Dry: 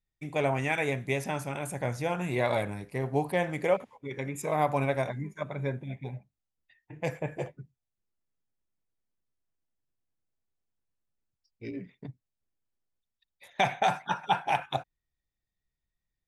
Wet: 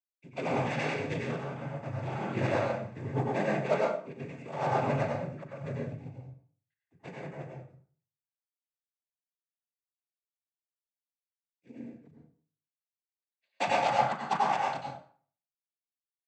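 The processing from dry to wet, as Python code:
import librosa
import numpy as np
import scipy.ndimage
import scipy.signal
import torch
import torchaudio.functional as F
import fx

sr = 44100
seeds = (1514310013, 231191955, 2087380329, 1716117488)

p1 = fx.air_absorb(x, sr, metres=350.0)
p2 = fx.cheby_harmonics(p1, sr, harmonics=(8,), levels_db=(-23,), full_scale_db=-14.5)
p3 = fx.quant_float(p2, sr, bits=2)
p4 = p2 + F.gain(torch.from_numpy(p3), -6.0).numpy()
p5 = fx.notch(p4, sr, hz=490.0, q=12.0)
p6 = fx.noise_vocoder(p5, sr, seeds[0], bands=16)
p7 = fx.high_shelf(p6, sr, hz=5200.0, db=5.0)
p8 = fx.doubler(p7, sr, ms=39.0, db=-14.0)
p9 = fx.rev_plate(p8, sr, seeds[1], rt60_s=0.63, hf_ratio=0.75, predelay_ms=80, drr_db=-2.0)
p10 = fx.band_widen(p9, sr, depth_pct=70)
y = F.gain(torch.from_numpy(p10), -8.0).numpy()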